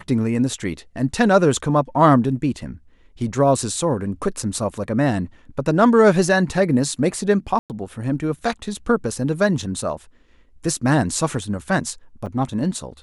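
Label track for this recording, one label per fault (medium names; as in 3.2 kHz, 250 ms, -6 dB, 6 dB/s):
7.590000	7.700000	dropout 108 ms
12.260000	12.260000	dropout 4.3 ms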